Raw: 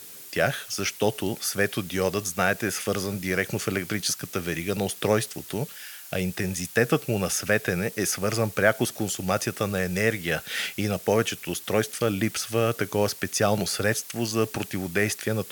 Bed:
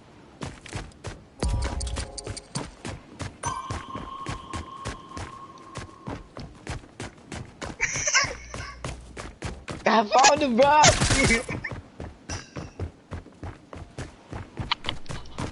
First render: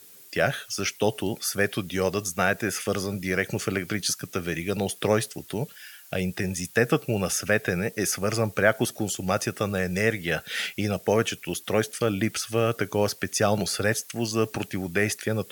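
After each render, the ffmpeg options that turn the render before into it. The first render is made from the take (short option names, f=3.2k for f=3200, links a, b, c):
-af "afftdn=nr=8:nf=-43"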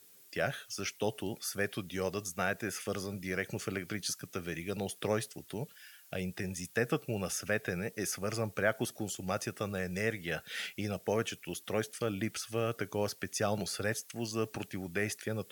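-af "volume=-9.5dB"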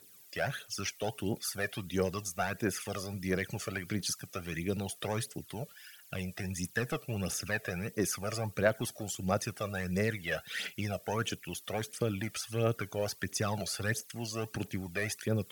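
-af "asoftclip=type=tanh:threshold=-23dB,aphaser=in_gain=1:out_gain=1:delay=1.8:decay=0.59:speed=1.5:type=triangular"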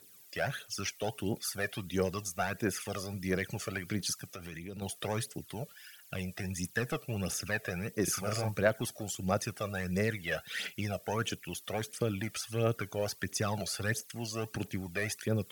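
-filter_complex "[0:a]asettb=1/sr,asplit=3[a][b][c];[a]atrim=end=4.264[d];[b]atrim=start=4.26:end=4.82,asetpts=PTS-STARTPTS,afade=t=in:d=0.004:c=qsin,afade=t=out:st=0.556:d=0.004:c=qsin,acompressor=threshold=-40dB:ratio=4:attack=3.2:release=140:knee=1:detection=peak[e];[c]atrim=start=4.816[f];[d][e]acrossfade=d=0.004:c1=hsin:c2=qsin[g];[g][f]acrossfade=d=0.004:c1=qsin:c2=hsin,asettb=1/sr,asplit=3[h][i][j];[h]atrim=end=8.044[k];[i]atrim=start=8.04:end=8.58,asetpts=PTS-STARTPTS,afade=t=in:d=0.004:c=qsin,afade=t=out:st=0.536:d=0.004:c=qsin,asplit=2[l][m];[m]adelay=38,volume=-2.5dB[n];[l][n]amix=inputs=2:normalize=0,atrim=end_sample=23814[o];[j]atrim=start=8.576[p];[k][o]acrossfade=d=0.004:c1=hsin:c2=qsin[q];[q][p]acrossfade=d=0.004:c1=qsin:c2=hsin"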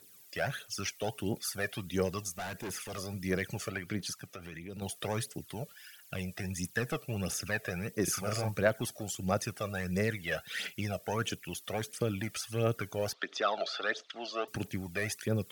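-filter_complex "[0:a]asettb=1/sr,asplit=3[a][b][c];[a]atrim=end=2.354[d];[b]atrim=start=2.35:end=2.98,asetpts=PTS-STARTPTS,afade=t=in:d=0.004:c=qsin,afade=t=out:st=0.626:d=0.004:c=qsin,asoftclip=type=hard:threshold=-36dB[e];[c]atrim=start=2.976[f];[d][e]acrossfade=d=0.004:c1=hsin:c2=qsin[g];[g][f]acrossfade=d=0.004:c1=qsin:c2=hsin,asettb=1/sr,asplit=3[h][i][j];[h]atrim=end=3.704[k];[i]atrim=start=3.7:end=4.7,asetpts=PTS-STARTPTS,afade=t=in:d=0.004:c=qsin,afade=t=out:st=0.996:d=0.004:c=qsin,bass=f=250:g=-2,treble=f=4k:g=-6[l];[j]atrim=start=4.696[m];[k][l]acrossfade=d=0.004:c1=hsin:c2=qsin[n];[n][m]acrossfade=d=0.004:c1=qsin:c2=hsin,asettb=1/sr,asplit=3[o][p][q];[o]atrim=end=13.134[r];[p]atrim=start=13.13:end=14.48,asetpts=PTS-STARTPTS,afade=t=in:d=0.004:c=qsin,afade=t=out:st=1.346:d=0.004:c=qsin,highpass=f=300:w=0.5412,highpass=f=300:w=1.3066,equalizer=f=660:t=q:w=4:g=8,equalizer=f=1.3k:t=q:w=4:g=10,equalizer=f=3.5k:t=q:w=4:g=10,lowpass=f=4.7k:w=0.5412,lowpass=f=4.7k:w=1.3066[s];[q]atrim=start=14.476[t];[r][s]acrossfade=d=0.004:c1=hsin:c2=qsin[u];[u][t]acrossfade=d=0.004:c1=qsin:c2=hsin"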